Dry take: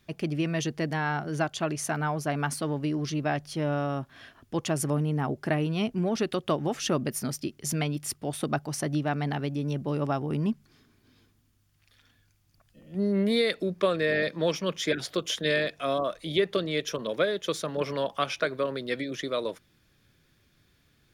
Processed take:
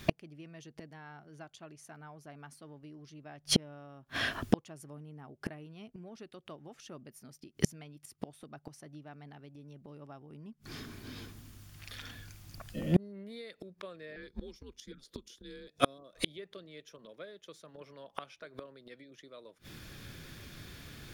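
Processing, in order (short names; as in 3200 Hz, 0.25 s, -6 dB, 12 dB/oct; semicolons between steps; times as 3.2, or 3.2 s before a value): 14.16–15.68 frequency shift -120 Hz; 14.28–16.13 spectral gain 550–3300 Hz -8 dB; flipped gate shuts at -27 dBFS, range -38 dB; gain +16.5 dB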